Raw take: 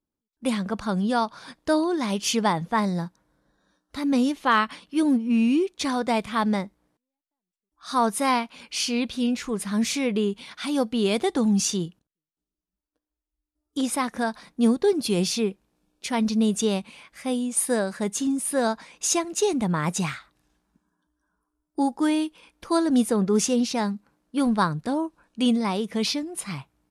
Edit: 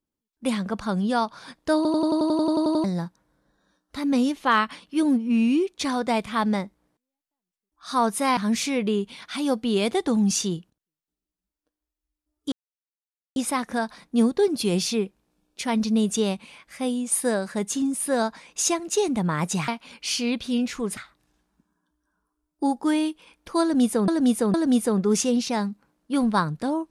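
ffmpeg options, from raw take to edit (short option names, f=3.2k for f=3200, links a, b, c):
-filter_complex "[0:a]asplit=19[a][b][c][d][e][f][g][h][i][j][k][l][m][n][o][p][q][r][s];[a]atrim=end=1.852[t];[b]atrim=start=1.758:end=1.852[u];[c]atrim=start=1.758:end=1.852[v];[d]atrim=start=1.758:end=1.852[w];[e]atrim=start=1.758:end=1.852[x];[f]atrim=start=1.758:end=1.852[y];[g]atrim=start=1.758:end=1.852[z];[h]atrim=start=1.758:end=1.852[aa];[i]atrim=start=1.758:end=1.852[ab];[j]atrim=start=1.758:end=1.852[ac];[k]atrim=start=1.758:end=1.852[ad];[l]atrim=start=1.758:end=1.852[ae];[m]atrim=start=2.838:end=8.372[af];[n]atrim=start=9.658:end=13.81,asetpts=PTS-STARTPTS,afade=t=out:st=4.148:d=0.004:c=hsin,apad=pad_dur=0.84[ag];[o]atrim=start=13.81:end=20.132,asetpts=PTS-STARTPTS,afade=t=in:d=0.004:c=hsin[ah];[p]atrim=start=8.368:end=9.662[ai];[q]atrim=start=20.128:end=23.242[aj];[r]atrim=start=22.778:end=23.242[ak];[s]atrim=start=22.778[al];[t][u]acrossfade=d=0.004:c1=hsin:c2=hsin[am];[am][v]acrossfade=d=0.004:c1=hsin:c2=hsin[an];[an][w]acrossfade=d=0.004:c1=hsin:c2=hsin[ao];[ao][x]acrossfade=d=0.004:c1=hsin:c2=hsin[ap];[ap][y]acrossfade=d=0.004:c1=hsin:c2=hsin[aq];[aq][z]acrossfade=d=0.004:c1=hsin:c2=hsin[ar];[ar][aa]acrossfade=d=0.004:c1=hsin:c2=hsin[as];[as][ab]acrossfade=d=0.004:c1=hsin:c2=hsin[at];[at][ac]acrossfade=d=0.004:c1=hsin:c2=hsin[au];[au][ad]acrossfade=d=0.004:c1=hsin:c2=hsin[av];[av][ae]acrossfade=d=0.004:c1=hsin:c2=hsin[aw];[aw][af]acrossfade=d=0.004:c1=hsin:c2=hsin[ax];[ag][ah]concat=n=2:v=0:a=1[ay];[ax][ay]acrossfade=d=0.004:c1=hsin:c2=hsin[az];[az][ai]acrossfade=d=0.004:c1=hsin:c2=hsin[ba];[ba][aj]acrossfade=d=0.004:c1=hsin:c2=hsin[bb];[bb][ak]acrossfade=d=0.004:c1=hsin:c2=hsin[bc];[bc][al]acrossfade=d=0.004:c1=hsin:c2=hsin"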